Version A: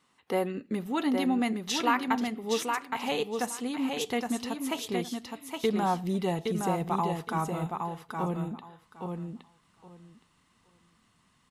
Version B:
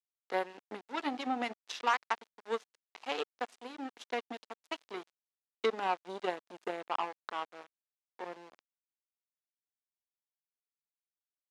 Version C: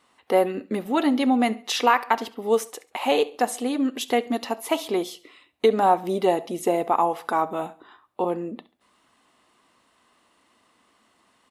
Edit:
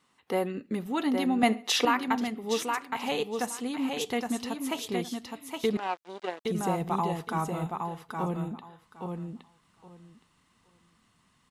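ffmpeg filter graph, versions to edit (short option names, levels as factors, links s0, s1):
-filter_complex "[0:a]asplit=3[s0][s1][s2];[s0]atrim=end=1.432[s3];[2:a]atrim=start=1.428:end=1.852[s4];[s1]atrim=start=1.848:end=5.772[s5];[1:a]atrim=start=5.768:end=6.452[s6];[s2]atrim=start=6.448[s7];[s3][s4]acrossfade=d=0.004:c1=hsin:c2=hsin[s8];[s8][s5]acrossfade=d=0.004:c1=hsin:c2=hsin[s9];[s9][s6]acrossfade=d=0.004:c1=hsin:c2=hsin[s10];[s10][s7]acrossfade=d=0.004:c1=hsin:c2=hsin"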